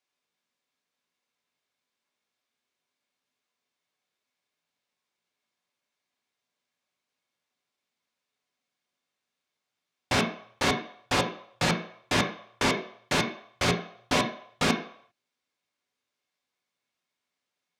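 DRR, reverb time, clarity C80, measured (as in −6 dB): 1.0 dB, 0.65 s, 12.0 dB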